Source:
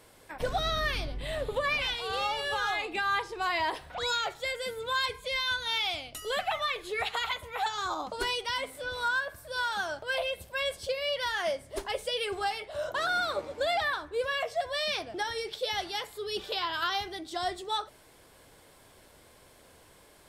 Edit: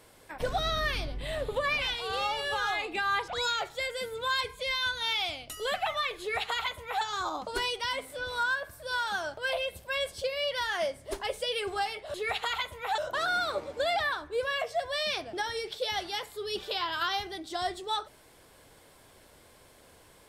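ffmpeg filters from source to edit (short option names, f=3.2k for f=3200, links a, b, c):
-filter_complex "[0:a]asplit=4[a][b][c][d];[a]atrim=end=3.282[e];[b]atrim=start=3.928:end=12.792[f];[c]atrim=start=6.848:end=7.692[g];[d]atrim=start=12.788[h];[e][f]acrossfade=d=0.004:c1=hsin:c2=hsin[i];[i][g]acrossfade=d=0.004:c1=hsin:c2=hsin[j];[j][h]acrossfade=d=0.004:c1=hsin:c2=hsin"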